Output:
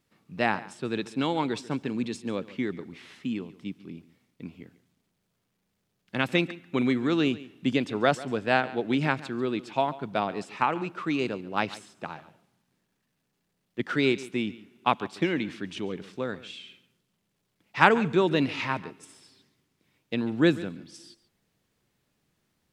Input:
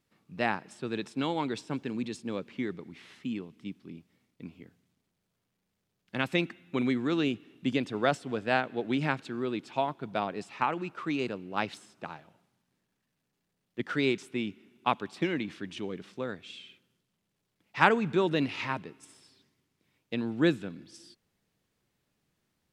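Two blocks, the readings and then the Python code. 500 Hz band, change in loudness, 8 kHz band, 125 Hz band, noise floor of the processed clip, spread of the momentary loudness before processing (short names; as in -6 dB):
+3.5 dB, +3.5 dB, +3.5 dB, +3.5 dB, -77 dBFS, 17 LU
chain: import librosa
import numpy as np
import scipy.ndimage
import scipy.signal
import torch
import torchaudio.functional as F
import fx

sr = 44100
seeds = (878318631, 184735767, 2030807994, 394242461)

y = x + 10.0 ** (-18.0 / 20.0) * np.pad(x, (int(140 * sr / 1000.0), 0))[:len(x)]
y = y * librosa.db_to_amplitude(3.5)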